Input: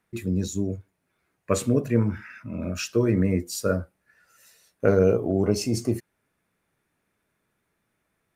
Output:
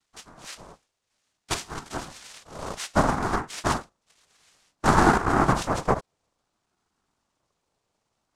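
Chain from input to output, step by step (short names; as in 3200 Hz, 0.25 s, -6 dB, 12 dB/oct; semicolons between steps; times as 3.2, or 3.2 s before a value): high-pass sweep 920 Hz -> 320 Hz, 1.43–3.8; noise vocoder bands 2; ring modulator with a swept carrier 420 Hz, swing 35%, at 0.58 Hz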